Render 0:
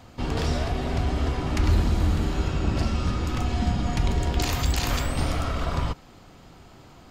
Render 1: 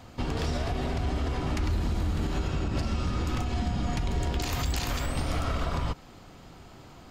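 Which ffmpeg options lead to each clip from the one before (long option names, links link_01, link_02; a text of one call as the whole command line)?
ffmpeg -i in.wav -af "alimiter=limit=-20dB:level=0:latency=1:release=104" out.wav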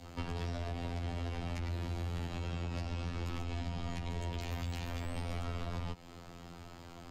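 ffmpeg -i in.wav -filter_complex "[0:a]adynamicequalizer=threshold=0.00316:dfrequency=1300:dqfactor=1.4:tfrequency=1300:tqfactor=1.4:attack=5:release=100:ratio=0.375:range=3:mode=cutabove:tftype=bell,afftfilt=real='hypot(re,im)*cos(PI*b)':imag='0':win_size=2048:overlap=0.75,acrossover=split=150|510|3200[link_01][link_02][link_03][link_04];[link_01]acompressor=threshold=-40dB:ratio=4[link_05];[link_02]acompressor=threshold=-48dB:ratio=4[link_06];[link_03]acompressor=threshold=-45dB:ratio=4[link_07];[link_04]acompressor=threshold=-57dB:ratio=4[link_08];[link_05][link_06][link_07][link_08]amix=inputs=4:normalize=0,volume=2dB" out.wav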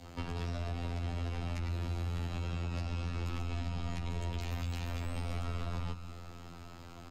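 ffmpeg -i in.wav -af "aecho=1:1:185|370|555|740|925|1110:0.224|0.132|0.0779|0.046|0.0271|0.016" out.wav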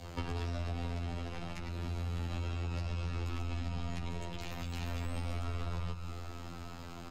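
ffmpeg -i in.wav -af "acompressor=threshold=-37dB:ratio=4,flanger=delay=1.7:depth=4.3:regen=-62:speed=0.34:shape=triangular,volume=8dB" out.wav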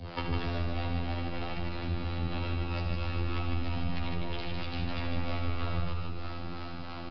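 ffmpeg -i in.wav -filter_complex "[0:a]acrossover=split=450[link_01][link_02];[link_01]aeval=exprs='val(0)*(1-0.7/2+0.7/2*cos(2*PI*3.1*n/s))':channel_layout=same[link_03];[link_02]aeval=exprs='val(0)*(1-0.7/2-0.7/2*cos(2*PI*3.1*n/s))':channel_layout=same[link_04];[link_03][link_04]amix=inputs=2:normalize=0,asplit=2[link_05][link_06];[link_06]aecho=0:1:75.8|154.5:0.355|0.631[link_07];[link_05][link_07]amix=inputs=2:normalize=0,aresample=11025,aresample=44100,volume=8dB" out.wav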